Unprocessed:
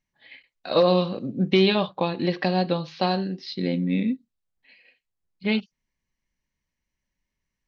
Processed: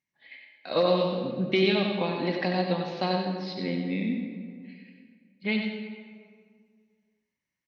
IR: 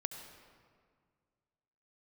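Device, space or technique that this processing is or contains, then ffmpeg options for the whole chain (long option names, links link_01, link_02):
PA in a hall: -filter_complex "[0:a]highpass=110,equalizer=frequency=2100:width_type=o:width=0.36:gain=6,aecho=1:1:93:0.473[link_01];[1:a]atrim=start_sample=2205[link_02];[link_01][link_02]afir=irnorm=-1:irlink=0,asettb=1/sr,asplit=3[link_03][link_04][link_05];[link_03]atrim=end=1.294[link_06];[link_04]atrim=start=1.29:end=2,asetpts=PTS-STARTPTS,afade=type=in:duration=0.004:curve=qsin,afade=type=out:start_time=0.706:duration=0.004:curve=qsin,bandreject=frequency=1000:width=5.3[link_07];[link_05]atrim=start=1.996[link_08];[link_06][link_07]acrossfade=duration=0.004:curve1=hsin:curve2=qsin[link_09];[link_09][link_08]acrossfade=duration=0.004:curve1=qsin:curve2=hsin,volume=-4dB"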